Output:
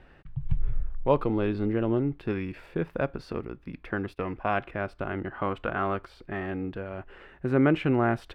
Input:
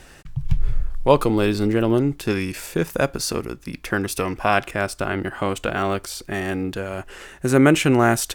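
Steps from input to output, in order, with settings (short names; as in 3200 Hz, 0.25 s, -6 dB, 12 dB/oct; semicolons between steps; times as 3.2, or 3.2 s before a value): air absorption 430 m; 3.92–4.57 gate -32 dBFS, range -16 dB; 5.32–6.46 dynamic EQ 1200 Hz, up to +6 dB, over -41 dBFS, Q 1.3; gain -6.5 dB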